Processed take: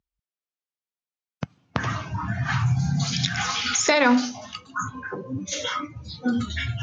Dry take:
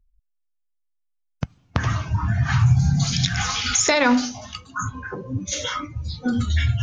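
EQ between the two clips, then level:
high-pass filter 160 Hz 12 dB per octave
high-frequency loss of the air 55 metres
0.0 dB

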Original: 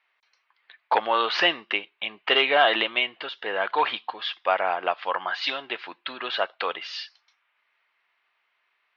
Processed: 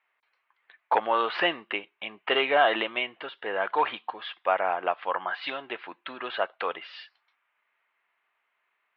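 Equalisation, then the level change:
high-frequency loss of the air 390 metres
0.0 dB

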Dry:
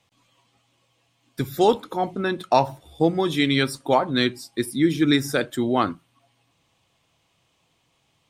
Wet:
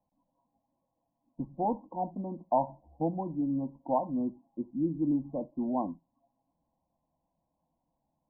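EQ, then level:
linear-phase brick-wall low-pass 1,100 Hz
low-shelf EQ 150 Hz +6 dB
phaser with its sweep stopped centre 410 Hz, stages 6
−8.0 dB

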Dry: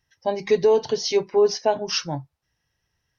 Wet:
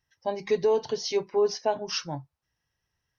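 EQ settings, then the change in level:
parametric band 1,100 Hz +2.5 dB
−6.0 dB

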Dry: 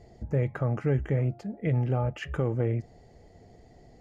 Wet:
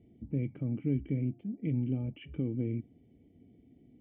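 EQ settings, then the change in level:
formant resonators in series i
high-pass filter 67 Hz
+4.5 dB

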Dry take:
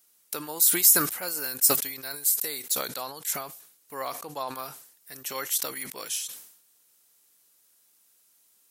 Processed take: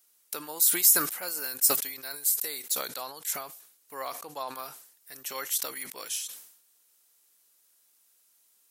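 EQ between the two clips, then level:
low-shelf EQ 210 Hz −10 dB
−2.0 dB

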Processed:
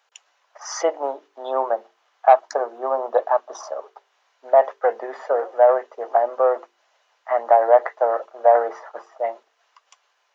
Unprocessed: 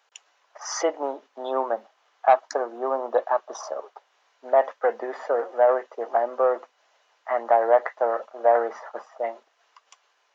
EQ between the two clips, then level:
high-pass filter 310 Hz 12 dB per octave
mains-hum notches 50/100/150/200/250/300/350/400/450 Hz
dynamic equaliser 680 Hz, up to +5 dB, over −31 dBFS, Q 1.1
0.0 dB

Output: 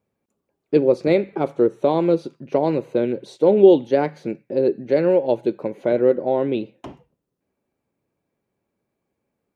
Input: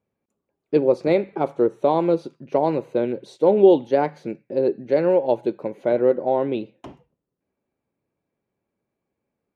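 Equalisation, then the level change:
dynamic equaliser 880 Hz, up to −6 dB, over −33 dBFS, Q 1.3
+3.0 dB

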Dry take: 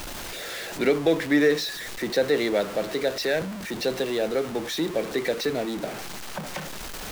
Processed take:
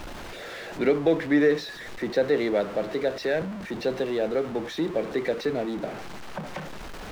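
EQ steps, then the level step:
low-pass filter 1,800 Hz 6 dB per octave
0.0 dB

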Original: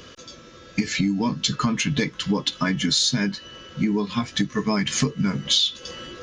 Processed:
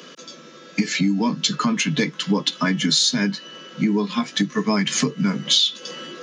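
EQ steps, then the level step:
Butterworth high-pass 150 Hz 72 dB per octave
+2.5 dB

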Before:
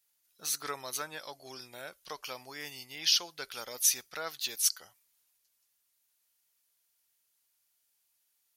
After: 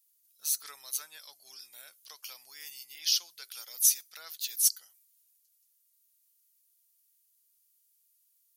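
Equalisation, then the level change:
first-order pre-emphasis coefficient 0.97
+2.5 dB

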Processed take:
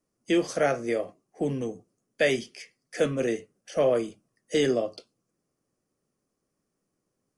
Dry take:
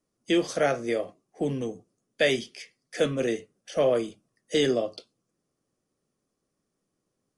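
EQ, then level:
parametric band 3,600 Hz −6.5 dB 0.42 octaves
0.0 dB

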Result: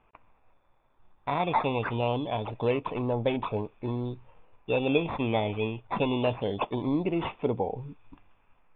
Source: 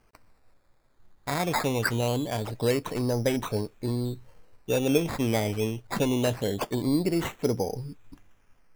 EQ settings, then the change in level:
dynamic equaliser 1,600 Hz, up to −6 dB, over −49 dBFS, Q 2.4
Chebyshev low-pass with heavy ripple 3,600 Hz, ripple 9 dB
+5.5 dB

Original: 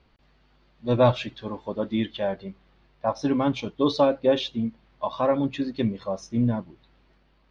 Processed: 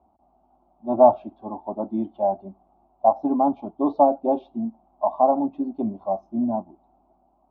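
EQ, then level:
high-pass filter 62 Hz 24 dB per octave
low-pass with resonance 740 Hz, resonance Q 5.2
phaser with its sweep stopped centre 480 Hz, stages 6
0.0 dB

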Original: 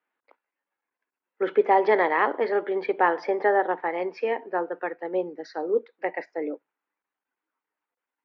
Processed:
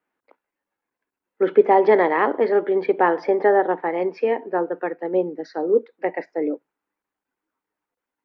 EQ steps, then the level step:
low-shelf EQ 460 Hz +11.5 dB
0.0 dB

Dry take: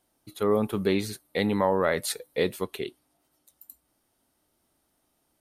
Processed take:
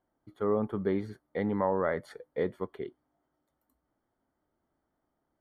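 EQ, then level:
Savitzky-Golay smoothing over 41 samples
−4.5 dB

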